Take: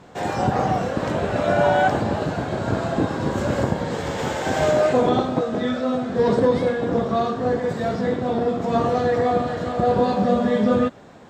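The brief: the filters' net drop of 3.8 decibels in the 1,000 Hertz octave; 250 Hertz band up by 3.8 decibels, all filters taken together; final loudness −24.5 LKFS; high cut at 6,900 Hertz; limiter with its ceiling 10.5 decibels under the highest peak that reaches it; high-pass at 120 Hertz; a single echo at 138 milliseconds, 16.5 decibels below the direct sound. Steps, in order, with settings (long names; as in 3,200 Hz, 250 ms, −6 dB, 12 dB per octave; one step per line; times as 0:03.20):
high-pass filter 120 Hz
low-pass filter 6,900 Hz
parametric band 250 Hz +5 dB
parametric band 1,000 Hz −6.5 dB
brickwall limiter −16.5 dBFS
single-tap delay 138 ms −16.5 dB
level +0.5 dB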